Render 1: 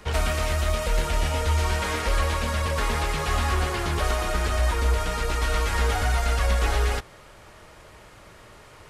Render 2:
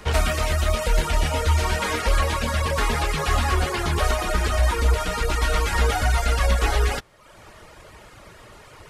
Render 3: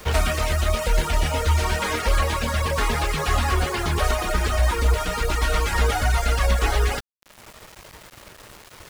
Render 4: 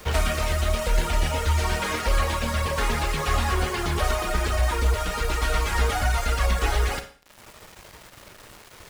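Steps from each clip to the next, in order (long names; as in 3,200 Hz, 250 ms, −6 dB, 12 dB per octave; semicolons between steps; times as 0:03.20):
reverb reduction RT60 0.74 s; level +4.5 dB
bit reduction 7 bits
four-comb reverb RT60 0.44 s, combs from 31 ms, DRR 8.5 dB; level −2.5 dB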